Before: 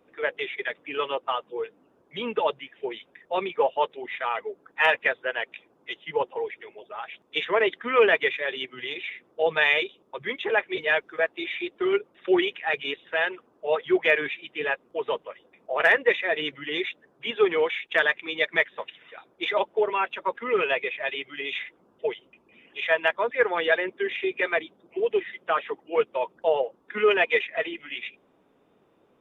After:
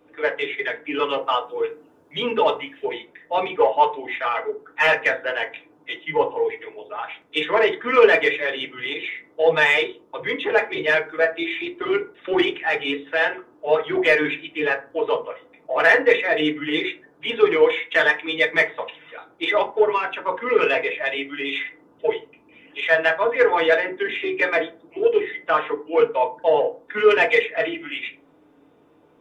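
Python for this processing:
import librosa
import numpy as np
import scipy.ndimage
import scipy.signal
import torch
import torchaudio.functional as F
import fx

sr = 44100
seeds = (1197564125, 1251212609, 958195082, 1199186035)

p1 = fx.high_shelf(x, sr, hz=3400.0, db=7.0, at=(1.08, 2.94))
p2 = 10.0 ** (-19.5 / 20.0) * np.tanh(p1 / 10.0 ** (-19.5 / 20.0))
p3 = p1 + (p2 * 10.0 ** (-6.5 / 20.0))
y = fx.rev_fdn(p3, sr, rt60_s=0.33, lf_ratio=1.3, hf_ratio=0.5, size_ms=20.0, drr_db=1.5)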